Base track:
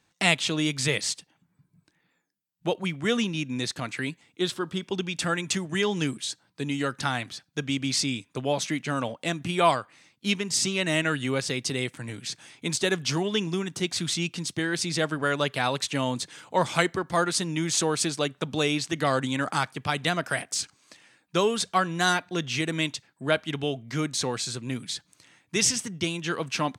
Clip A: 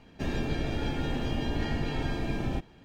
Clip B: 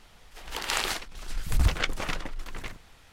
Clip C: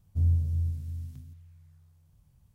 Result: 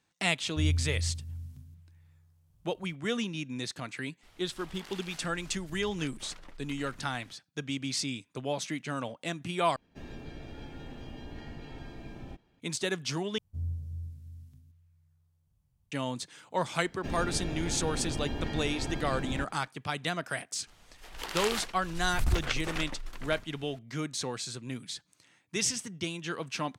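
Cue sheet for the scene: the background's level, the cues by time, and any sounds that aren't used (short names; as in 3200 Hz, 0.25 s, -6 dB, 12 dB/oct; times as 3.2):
base track -6.5 dB
0.41 add C -4 dB
4.23 add B -5.5 dB + compressor 12:1, threshold -38 dBFS
9.76 replace with A -13.5 dB
13.38 replace with C -10.5 dB
16.84 add A -4.5 dB
20.67 add B -4.5 dB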